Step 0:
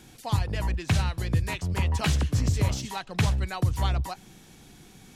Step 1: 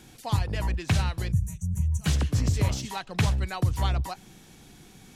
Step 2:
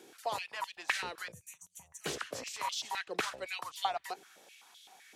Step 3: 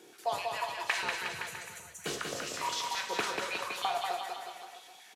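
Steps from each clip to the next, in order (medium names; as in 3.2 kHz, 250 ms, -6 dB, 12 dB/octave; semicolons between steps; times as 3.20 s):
time-frequency box 1.32–2.06 s, 210–5700 Hz -26 dB
step-sequenced high-pass 7.8 Hz 410–3400 Hz; trim -6 dB
bouncing-ball echo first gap 190 ms, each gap 0.9×, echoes 5; reverberation, pre-delay 3 ms, DRR 4 dB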